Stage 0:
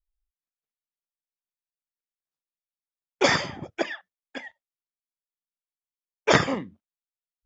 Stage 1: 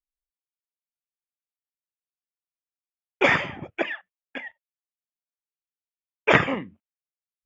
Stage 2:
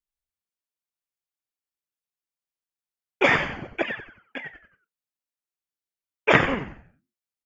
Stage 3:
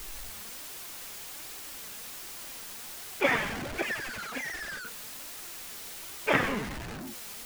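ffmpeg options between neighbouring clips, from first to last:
-af "agate=range=0.178:threshold=0.00282:ratio=16:detection=peak,highshelf=f=3500:t=q:w=3:g=-9.5"
-filter_complex "[0:a]asplit=5[s0][s1][s2][s3][s4];[s1]adelay=91,afreqshift=-110,volume=0.282[s5];[s2]adelay=182,afreqshift=-220,volume=0.11[s6];[s3]adelay=273,afreqshift=-330,volume=0.0427[s7];[s4]adelay=364,afreqshift=-440,volume=0.0168[s8];[s0][s5][s6][s7][s8]amix=inputs=5:normalize=0"
-af "aeval=exprs='val(0)+0.5*0.0631*sgn(val(0))':c=same,flanger=delay=2.3:depth=2.7:regen=58:speed=1.3:shape=triangular,volume=0.596"

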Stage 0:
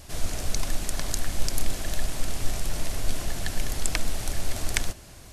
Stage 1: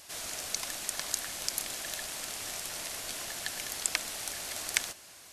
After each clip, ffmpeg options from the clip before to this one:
-af "highpass=f=1200:p=1"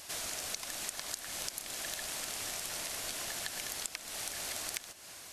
-af "acompressor=threshold=0.0126:ratio=16,volume=1.41"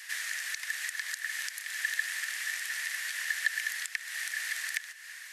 -af "highpass=f=1800:t=q:w=11,volume=0.841"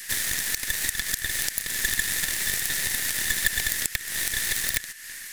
-af "aeval=exprs='0.188*(cos(1*acos(clip(val(0)/0.188,-1,1)))-cos(1*PI/2))+0.0335*(cos(8*acos(clip(val(0)/0.188,-1,1)))-cos(8*PI/2))':c=same,aemphasis=mode=production:type=50kf,volume=1.26"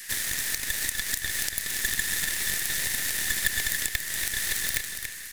-af "aecho=1:1:283|566|849|1132:0.447|0.152|0.0516|0.0176,volume=0.75"

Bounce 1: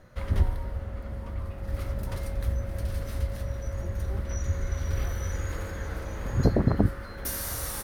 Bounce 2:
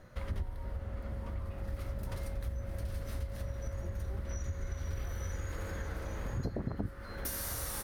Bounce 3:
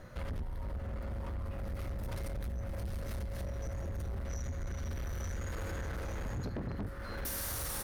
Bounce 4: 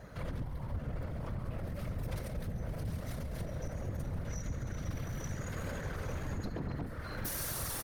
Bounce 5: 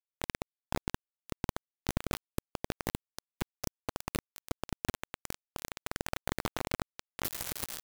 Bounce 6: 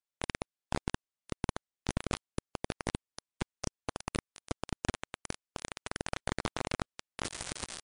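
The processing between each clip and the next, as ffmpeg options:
-af "acompressor=threshold=0.0224:ratio=4,volume=0.841"
-af "asoftclip=type=tanh:threshold=0.0112,volume=1.78"
-af "afftfilt=real='hypot(re,im)*cos(2*PI*random(0))':imag='hypot(re,im)*sin(2*PI*random(1))':win_size=512:overlap=0.75,aecho=1:1:138:0.2,volume=2"
-af "acrusher=bits=4:mix=0:aa=0.000001,volume=1.58"
-af "volume=1.12" -ar 22050 -c:a libmp3lame -b:a 144k

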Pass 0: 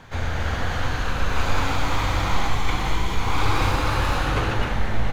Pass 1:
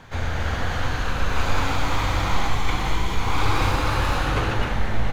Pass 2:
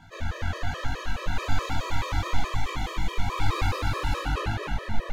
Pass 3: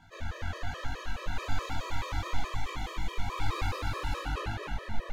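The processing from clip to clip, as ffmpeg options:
-af anull
-af "bandreject=f=66.34:t=h:w=4,bandreject=f=132.68:t=h:w=4,bandreject=f=199.02:t=h:w=4,bandreject=f=265.36:t=h:w=4,bandreject=f=331.7:t=h:w=4,bandreject=f=398.04:t=h:w=4,bandreject=f=464.38:t=h:w=4,bandreject=f=530.72:t=h:w=4,bandreject=f=597.06:t=h:w=4,bandreject=f=663.4:t=h:w=4,bandreject=f=729.74:t=h:w=4,bandreject=f=796.08:t=h:w=4,bandreject=f=862.42:t=h:w=4,bandreject=f=928.76:t=h:w=4,bandreject=f=995.1:t=h:w=4,bandreject=f=1061.44:t=h:w=4,bandreject=f=1127.78:t=h:w=4,bandreject=f=1194.12:t=h:w=4,bandreject=f=1260.46:t=h:w=4,bandreject=f=1326.8:t=h:w=4,bandreject=f=1393.14:t=h:w=4,bandreject=f=1459.48:t=h:w=4,bandreject=f=1525.82:t=h:w=4,bandreject=f=1592.16:t=h:w=4,bandreject=f=1658.5:t=h:w=4,bandreject=f=1724.84:t=h:w=4,bandreject=f=1791.18:t=h:w=4,bandreject=f=1857.52:t=h:w=4,bandreject=f=1923.86:t=h:w=4,bandreject=f=1990.2:t=h:w=4,bandreject=f=2056.54:t=h:w=4,bandreject=f=2122.88:t=h:w=4,bandreject=f=2189.22:t=h:w=4,bandreject=f=2255.56:t=h:w=4,bandreject=f=2321.9:t=h:w=4,flanger=delay=19:depth=3.7:speed=1.1,afftfilt=real='re*gt(sin(2*PI*4.7*pts/sr)*(1-2*mod(floor(b*sr/1024/330),2)),0)':imag='im*gt(sin(2*PI*4.7*pts/sr)*(1-2*mod(floor(b*sr/1024/330),2)),0)':win_size=1024:overlap=0.75"
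-af "equalizer=f=150:w=0.85:g=-2.5,volume=0.531"

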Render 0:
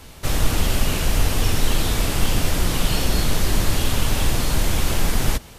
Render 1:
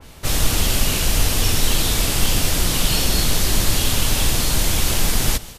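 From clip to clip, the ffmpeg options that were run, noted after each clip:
-af "aecho=1:1:147:0.106,adynamicequalizer=threshold=0.00631:dfrequency=2600:dqfactor=0.7:tfrequency=2600:tqfactor=0.7:attack=5:release=100:ratio=0.375:range=3.5:mode=boostabove:tftype=highshelf"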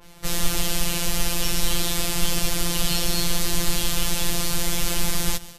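-af "afftfilt=real='hypot(re,im)*cos(PI*b)':imag='0':win_size=1024:overlap=0.75,volume=0.891"

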